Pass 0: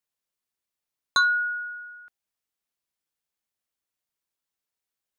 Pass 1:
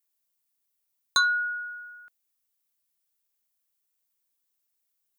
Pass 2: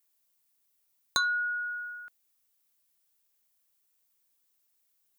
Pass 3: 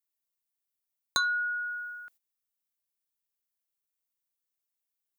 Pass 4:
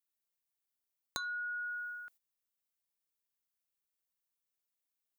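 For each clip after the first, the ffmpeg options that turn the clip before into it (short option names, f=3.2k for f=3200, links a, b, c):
-af "aemphasis=mode=production:type=50kf,volume=-3dB"
-af "acompressor=threshold=-38dB:ratio=2,volume=4.5dB"
-af "agate=range=-13dB:threshold=-58dB:ratio=16:detection=peak"
-af "acompressor=threshold=-34dB:ratio=12,volume=-2.5dB"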